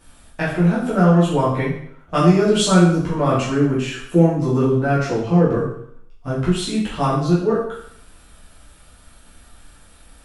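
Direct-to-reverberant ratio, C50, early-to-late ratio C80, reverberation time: −9.0 dB, 3.0 dB, 6.5 dB, 0.65 s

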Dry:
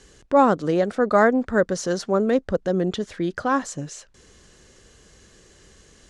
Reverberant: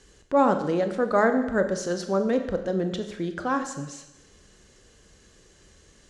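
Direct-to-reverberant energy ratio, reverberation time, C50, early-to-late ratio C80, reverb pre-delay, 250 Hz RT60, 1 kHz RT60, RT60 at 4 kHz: 7.0 dB, 0.95 s, 9.5 dB, 11.5 dB, 24 ms, 0.95 s, 0.95 s, 0.90 s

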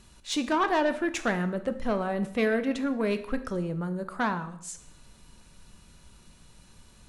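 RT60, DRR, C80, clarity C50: 0.65 s, 9.5 dB, 16.0 dB, 13.5 dB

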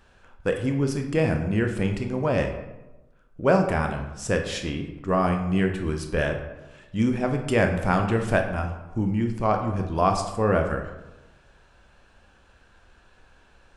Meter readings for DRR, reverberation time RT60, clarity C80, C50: 4.0 dB, 1.0 s, 9.5 dB, 7.0 dB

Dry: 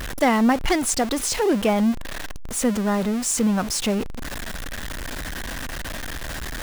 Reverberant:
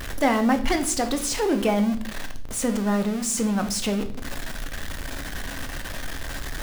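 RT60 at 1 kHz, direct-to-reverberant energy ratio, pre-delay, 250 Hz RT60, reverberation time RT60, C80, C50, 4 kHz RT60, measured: 0.45 s, 6.5 dB, 3 ms, 1.0 s, 0.55 s, 16.5 dB, 13.0 dB, 0.50 s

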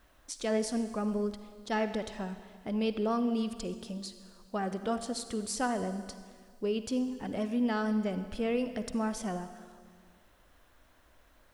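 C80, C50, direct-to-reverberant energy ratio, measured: 11.5 dB, 10.5 dB, 10.0 dB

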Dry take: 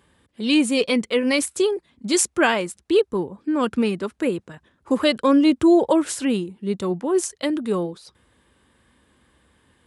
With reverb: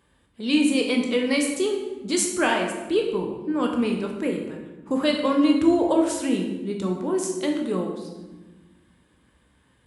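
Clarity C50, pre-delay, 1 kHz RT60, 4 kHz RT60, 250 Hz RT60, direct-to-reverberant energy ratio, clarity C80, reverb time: 5.0 dB, 16 ms, 1.1 s, 0.80 s, 1.9 s, 1.5 dB, 7.0 dB, 1.2 s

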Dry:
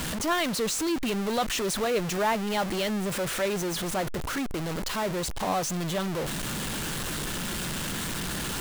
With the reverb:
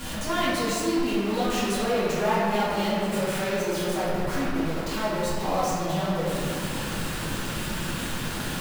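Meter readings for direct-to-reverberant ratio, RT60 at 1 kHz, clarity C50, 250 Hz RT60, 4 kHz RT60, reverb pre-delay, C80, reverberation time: −11.0 dB, 2.4 s, −2.5 dB, 3.0 s, 1.3 s, 4 ms, −0.5 dB, 2.6 s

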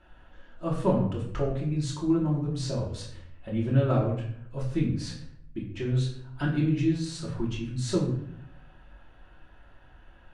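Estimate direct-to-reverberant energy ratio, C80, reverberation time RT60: −4.5 dB, 8.0 dB, 0.65 s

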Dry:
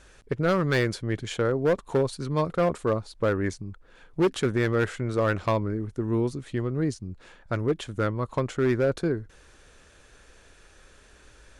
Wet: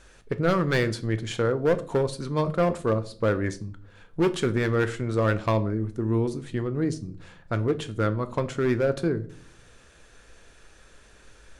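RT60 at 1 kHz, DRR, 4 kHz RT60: 0.40 s, 10.0 dB, 0.35 s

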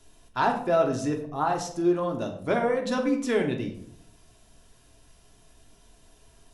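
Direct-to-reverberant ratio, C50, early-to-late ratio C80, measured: 2.0 dB, 9.5 dB, 11.5 dB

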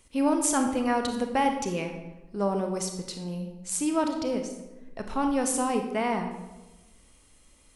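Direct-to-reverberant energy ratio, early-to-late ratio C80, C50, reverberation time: 4.5 dB, 9.0 dB, 7.0 dB, 1.1 s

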